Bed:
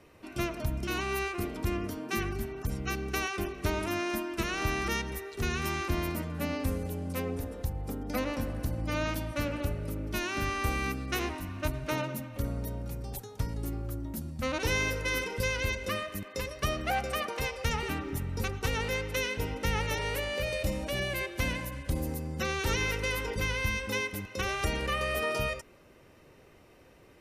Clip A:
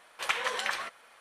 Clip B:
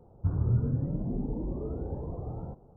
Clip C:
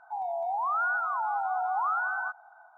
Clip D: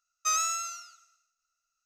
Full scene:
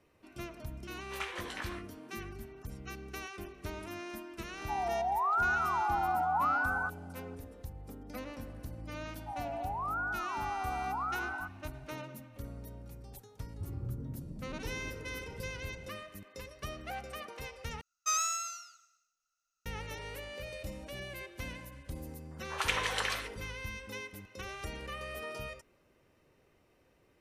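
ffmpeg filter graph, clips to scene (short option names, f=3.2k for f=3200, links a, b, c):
-filter_complex "[1:a]asplit=2[a][b];[3:a]asplit=2[c][d];[0:a]volume=-11dB[e];[a]flanger=delay=16.5:depth=5.2:speed=1.7[f];[2:a]equalizer=f=720:t=o:w=0.77:g=-5.5[g];[b]acrossover=split=480|1600[h][i][j];[j]adelay=80[k];[h]adelay=160[l];[l][i][k]amix=inputs=3:normalize=0[m];[e]asplit=2[n][o];[n]atrim=end=17.814[p];[4:a]atrim=end=1.85,asetpts=PTS-STARTPTS,volume=-3.5dB[q];[o]atrim=start=19.656[r];[f]atrim=end=1.2,asetpts=PTS-STARTPTS,volume=-7.5dB,afade=t=in:d=0.004:c=hsin,afade=t=out:st=1.196:d=0.004:c=hsin,adelay=910[s];[c]atrim=end=2.77,asetpts=PTS-STARTPTS,volume=-1.5dB,afade=t=in:d=0.004:c=hsin,afade=t=out:st=2.766:d=0.004:c=hsin,adelay=4580[t];[d]atrim=end=2.77,asetpts=PTS-STARTPTS,volume=-7.5dB,afade=t=in:d=0.004:c=hsin,afade=t=out:st=2.766:d=0.004:c=hsin,adelay=9160[u];[g]atrim=end=2.76,asetpts=PTS-STARTPTS,volume=-13dB,afade=t=in:d=0.004:c=hsin,afade=t=out:st=2.756:d=0.004:c=hsin,adelay=13360[v];[m]atrim=end=1.2,asetpts=PTS-STARTPTS,afade=t=in:d=0.004:c=hsin,afade=t=out:st=1.196:d=0.004:c=hsin,adelay=22310[w];[p][q]acrossfade=d=0.004:c1=hsin:c2=hsin[x];[x][r]acrossfade=d=0.004:c1=hsin:c2=hsin[y];[y][s][t][u][v][w]amix=inputs=6:normalize=0"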